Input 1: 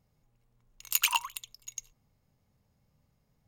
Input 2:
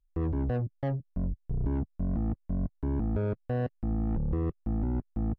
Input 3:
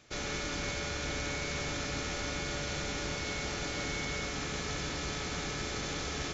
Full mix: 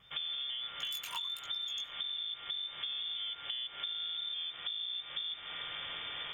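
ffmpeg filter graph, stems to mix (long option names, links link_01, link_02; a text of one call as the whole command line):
ffmpeg -i stem1.wav -i stem2.wav -i stem3.wav -filter_complex "[0:a]acompressor=threshold=-34dB:ratio=3,flanger=delay=16:depth=5.8:speed=1.3,volume=3dB[link_01];[1:a]aphaser=in_gain=1:out_gain=1:delay=4.2:decay=0.43:speed=0.84:type=sinusoidal,volume=3dB[link_02];[2:a]volume=-3.5dB[link_03];[link_02][link_03]amix=inputs=2:normalize=0,lowpass=frequency=3100:width_type=q:width=0.5098,lowpass=frequency=3100:width_type=q:width=0.6013,lowpass=frequency=3100:width_type=q:width=0.9,lowpass=frequency=3100:width_type=q:width=2.563,afreqshift=-3600,alimiter=limit=-19.5dB:level=0:latency=1:release=78,volume=0dB[link_04];[link_01][link_04]amix=inputs=2:normalize=0,acompressor=threshold=-36dB:ratio=12" out.wav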